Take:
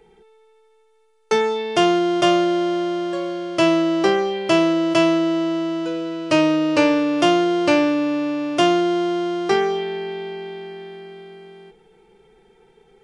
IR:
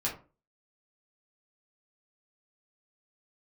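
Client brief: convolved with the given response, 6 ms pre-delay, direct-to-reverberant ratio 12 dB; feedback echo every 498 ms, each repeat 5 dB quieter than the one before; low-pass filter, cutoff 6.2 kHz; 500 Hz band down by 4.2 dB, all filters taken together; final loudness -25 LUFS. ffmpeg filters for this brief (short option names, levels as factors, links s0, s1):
-filter_complex "[0:a]lowpass=6200,equalizer=f=500:t=o:g=-7,aecho=1:1:498|996|1494|1992|2490|2988|3486:0.562|0.315|0.176|0.0988|0.0553|0.031|0.0173,asplit=2[s0][s1];[1:a]atrim=start_sample=2205,adelay=6[s2];[s1][s2]afir=irnorm=-1:irlink=0,volume=0.141[s3];[s0][s3]amix=inputs=2:normalize=0,volume=0.562"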